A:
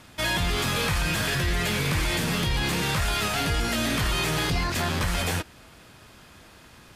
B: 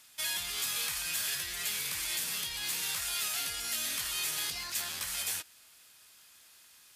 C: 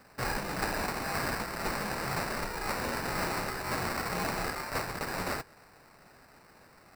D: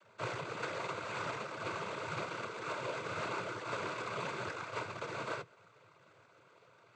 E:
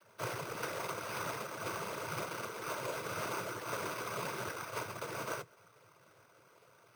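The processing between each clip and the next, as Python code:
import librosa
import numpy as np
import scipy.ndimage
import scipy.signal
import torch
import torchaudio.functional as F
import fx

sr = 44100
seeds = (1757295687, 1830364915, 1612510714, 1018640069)

y1 = librosa.effects.preemphasis(x, coef=0.97, zi=[0.0])
y2 = fx.sample_hold(y1, sr, seeds[0], rate_hz=3300.0, jitter_pct=0)
y2 = y2 * 10.0 ** (1.5 / 20.0)
y3 = fx.fixed_phaser(y2, sr, hz=1200.0, stages=8)
y3 = fx.noise_vocoder(y3, sr, seeds[1], bands=16)
y3 = y3 * 10.0 ** (-1.5 / 20.0)
y4 = np.repeat(y3[::6], 6)[:len(y3)]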